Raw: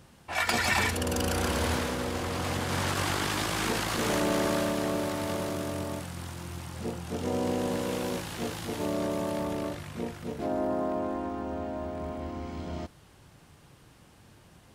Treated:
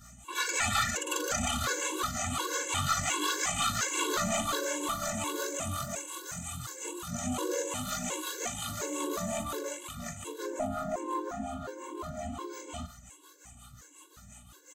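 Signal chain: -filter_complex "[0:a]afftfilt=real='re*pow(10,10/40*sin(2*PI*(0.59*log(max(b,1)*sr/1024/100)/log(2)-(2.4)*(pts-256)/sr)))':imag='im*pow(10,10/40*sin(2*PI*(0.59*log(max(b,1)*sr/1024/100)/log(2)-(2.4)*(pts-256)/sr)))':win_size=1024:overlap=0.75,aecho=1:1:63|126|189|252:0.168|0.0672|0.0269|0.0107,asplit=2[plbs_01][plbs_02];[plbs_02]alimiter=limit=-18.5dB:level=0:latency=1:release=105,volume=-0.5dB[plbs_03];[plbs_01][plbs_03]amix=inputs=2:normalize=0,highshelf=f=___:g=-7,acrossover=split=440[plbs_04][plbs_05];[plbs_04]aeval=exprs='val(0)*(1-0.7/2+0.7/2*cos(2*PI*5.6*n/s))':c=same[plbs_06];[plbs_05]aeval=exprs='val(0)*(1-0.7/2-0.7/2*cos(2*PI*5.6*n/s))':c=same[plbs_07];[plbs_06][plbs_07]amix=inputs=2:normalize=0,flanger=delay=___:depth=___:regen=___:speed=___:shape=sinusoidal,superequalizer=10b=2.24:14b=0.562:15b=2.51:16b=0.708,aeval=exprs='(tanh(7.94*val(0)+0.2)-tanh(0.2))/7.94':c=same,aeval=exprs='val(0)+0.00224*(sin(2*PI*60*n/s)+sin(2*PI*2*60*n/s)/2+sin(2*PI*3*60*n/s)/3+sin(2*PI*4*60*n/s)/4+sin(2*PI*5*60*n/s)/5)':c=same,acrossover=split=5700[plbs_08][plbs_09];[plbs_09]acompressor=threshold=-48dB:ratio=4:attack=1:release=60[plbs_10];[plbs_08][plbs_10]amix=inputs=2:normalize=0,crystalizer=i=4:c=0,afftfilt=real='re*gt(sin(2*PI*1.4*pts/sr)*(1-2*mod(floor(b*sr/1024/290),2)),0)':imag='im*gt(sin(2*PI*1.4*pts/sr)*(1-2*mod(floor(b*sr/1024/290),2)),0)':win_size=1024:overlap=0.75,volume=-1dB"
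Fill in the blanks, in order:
11000, 2.5, 7.7, 41, 2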